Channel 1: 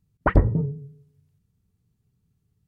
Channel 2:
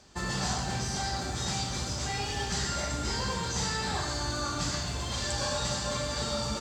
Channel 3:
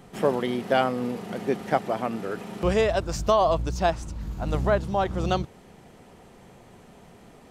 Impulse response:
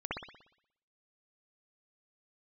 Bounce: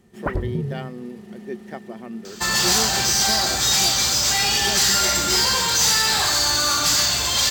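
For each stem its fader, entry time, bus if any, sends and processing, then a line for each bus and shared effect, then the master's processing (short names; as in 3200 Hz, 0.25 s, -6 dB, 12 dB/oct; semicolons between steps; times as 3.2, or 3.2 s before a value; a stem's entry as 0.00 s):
+0.5 dB, 0.00 s, no send, harmonic-percussive split harmonic +6 dB; compressor, threshold -23 dBFS, peak gain reduction 14 dB
-1.0 dB, 2.25 s, no send, low shelf 400 Hz -11 dB; sine folder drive 9 dB, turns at -18.5 dBFS
-15.5 dB, 0.00 s, no send, small resonant body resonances 220/360/1800 Hz, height 17 dB, ringing for 90 ms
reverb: off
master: high shelf 2500 Hz +10.5 dB; decimation joined by straight lines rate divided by 2×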